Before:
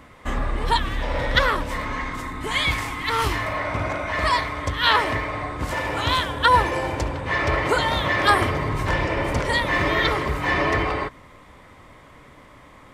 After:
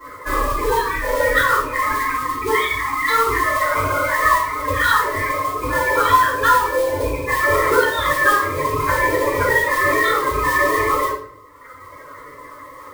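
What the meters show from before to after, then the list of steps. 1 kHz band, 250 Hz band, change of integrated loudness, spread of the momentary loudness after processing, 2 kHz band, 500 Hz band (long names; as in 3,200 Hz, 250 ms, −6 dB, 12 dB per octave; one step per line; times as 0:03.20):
+6.0 dB, 0.0 dB, +4.5 dB, 6 LU, +5.0 dB, +6.0 dB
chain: loose part that buzzes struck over −27 dBFS, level −18 dBFS
high-pass filter 160 Hz 6 dB per octave
gate on every frequency bin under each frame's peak −10 dB strong
reverb reduction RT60 1.7 s
low-shelf EQ 340 Hz −12 dB
downward compressor 6 to 1, threshold −31 dBFS, peak gain reduction 15 dB
phaser with its sweep stopped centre 760 Hz, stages 6
noise that follows the level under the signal 13 dB
rectangular room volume 100 cubic metres, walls mixed, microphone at 4.1 metres
level +5 dB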